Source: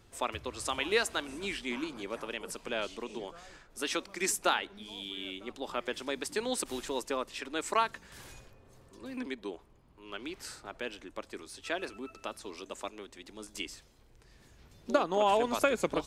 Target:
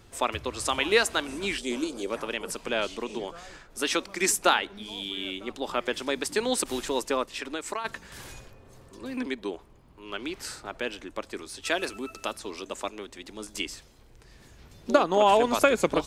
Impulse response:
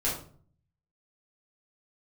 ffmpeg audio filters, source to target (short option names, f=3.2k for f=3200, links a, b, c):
-filter_complex "[0:a]asettb=1/sr,asplit=3[a][b][c];[a]atrim=end=1.584[d];[b]atrim=start=1.58:end=2.1,asetpts=PTS-STARTPTS,afade=t=in:d=0.004:c=qsin,afade=t=out:st=0.516:d=0.004:c=qsin,equalizer=f=125:t=o:w=1:g=-11,equalizer=f=500:t=o:w=1:g=7,equalizer=f=1k:t=o:w=1:g=-8,equalizer=f=2k:t=o:w=1:g=-8,equalizer=f=8k:t=o:w=1:g=9[e];[c]atrim=start=2.096[f];[d][e]acrossfade=d=0.004:c1=hsin:c2=qsin[g];[g][f]acrossfade=d=0.004:c1=qsin:c2=hsin,asplit=3[h][i][j];[h]afade=t=out:st=7.25:d=0.02[k];[i]acompressor=threshold=-36dB:ratio=8,afade=t=in:st=7.25:d=0.02,afade=t=out:st=7.84:d=0.02[l];[j]afade=t=in:st=7.84:d=0.02[m];[k][l][m]amix=inputs=3:normalize=0,asettb=1/sr,asplit=3[n][o][p];[n]atrim=end=11.654[q];[o]atrim=start=11.65:end=12.33,asetpts=PTS-STARTPTS,afade=t=in:d=0.004:c=qsin,afade=t=out:st=0.676:d=0.004:c=qsin,highshelf=f=4.9k:g=10[r];[p]atrim=start=12.326[s];[q][r]acrossfade=d=0.004:c1=hsin:c2=qsin[t];[t][s]acrossfade=d=0.004:c1=qsin:c2=hsin,volume=6.5dB"